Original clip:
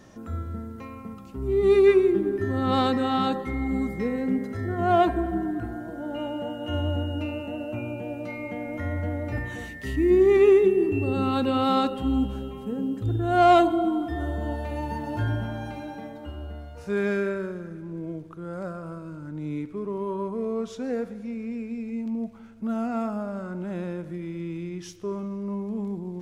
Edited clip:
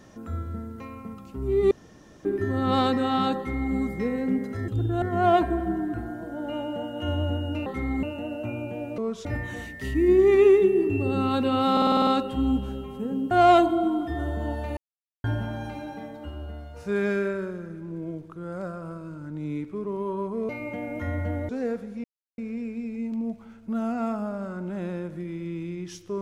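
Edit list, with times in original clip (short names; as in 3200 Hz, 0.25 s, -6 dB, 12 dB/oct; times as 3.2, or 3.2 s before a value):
1.71–2.25 room tone
3.37–3.74 copy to 7.32
8.27–9.27 swap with 20.5–20.77
11.74 stutter 0.05 s, 8 plays
12.98–13.32 move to 4.68
14.78–15.25 mute
21.32 insert silence 0.34 s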